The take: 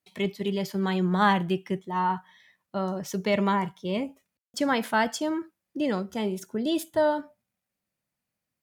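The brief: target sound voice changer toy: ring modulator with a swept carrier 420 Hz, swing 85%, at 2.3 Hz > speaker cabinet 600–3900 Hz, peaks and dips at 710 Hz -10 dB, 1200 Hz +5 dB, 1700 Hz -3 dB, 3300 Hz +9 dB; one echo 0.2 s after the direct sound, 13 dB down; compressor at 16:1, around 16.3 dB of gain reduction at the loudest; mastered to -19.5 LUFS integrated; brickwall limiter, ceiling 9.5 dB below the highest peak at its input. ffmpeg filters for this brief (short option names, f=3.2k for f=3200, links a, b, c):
-af "acompressor=threshold=-35dB:ratio=16,alimiter=level_in=9dB:limit=-24dB:level=0:latency=1,volume=-9dB,aecho=1:1:200:0.224,aeval=exprs='val(0)*sin(2*PI*420*n/s+420*0.85/2.3*sin(2*PI*2.3*n/s))':c=same,highpass=600,equalizer=f=710:t=q:w=4:g=-10,equalizer=f=1.2k:t=q:w=4:g=5,equalizer=f=1.7k:t=q:w=4:g=-3,equalizer=f=3.3k:t=q:w=4:g=9,lowpass=f=3.9k:w=0.5412,lowpass=f=3.9k:w=1.3066,volume=29dB"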